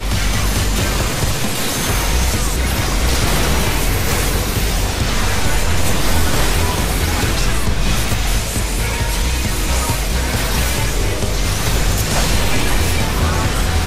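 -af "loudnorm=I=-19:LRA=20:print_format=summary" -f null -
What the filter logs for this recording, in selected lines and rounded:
Input Integrated:    -17.6 LUFS
Input True Peak:      -4.5 dBTP
Input LRA:             1.0 LU
Input Threshold:     -27.6 LUFS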